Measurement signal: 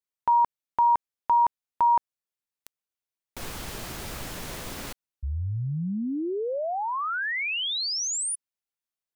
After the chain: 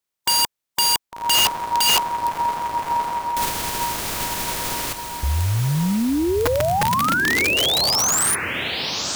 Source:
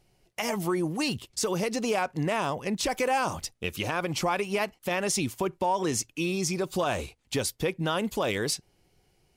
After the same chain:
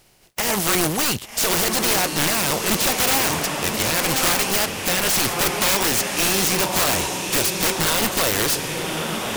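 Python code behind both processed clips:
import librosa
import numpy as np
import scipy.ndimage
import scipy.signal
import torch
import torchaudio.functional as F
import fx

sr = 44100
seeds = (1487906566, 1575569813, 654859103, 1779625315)

y = fx.spec_flatten(x, sr, power=0.53)
y = fx.echo_diffused(y, sr, ms=1156, feedback_pct=42, wet_db=-6.5)
y = (np.mod(10.0 ** (21.5 / 20.0) * y + 1.0, 2.0) - 1.0) / 10.0 ** (21.5 / 20.0)
y = y * librosa.db_to_amplitude(9.0)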